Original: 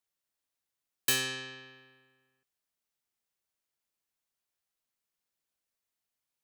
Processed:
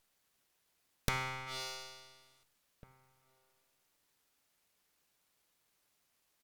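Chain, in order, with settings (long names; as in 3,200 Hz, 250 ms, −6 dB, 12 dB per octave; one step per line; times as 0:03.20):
notch filter 3,700 Hz
treble cut that deepens with the level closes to 670 Hz, closed at −35.5 dBFS
octave-band graphic EQ 125/250/500/1,000/2,000/4,000/8,000 Hz −5/−11/+9/−5/+10/+6/+10 dB
full-wave rectification
slap from a distant wall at 300 metres, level −26 dB
tube saturation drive 19 dB, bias 0.6
convolution reverb RT60 0.80 s, pre-delay 7 ms, DRR 17.5 dB
level +11 dB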